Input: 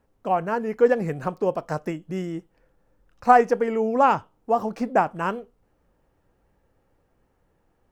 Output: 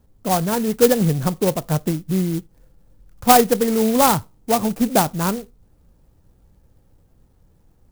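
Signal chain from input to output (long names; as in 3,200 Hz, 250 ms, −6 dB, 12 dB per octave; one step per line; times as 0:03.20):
bass and treble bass +12 dB, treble +3 dB
converter with an unsteady clock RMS 0.094 ms
level +2 dB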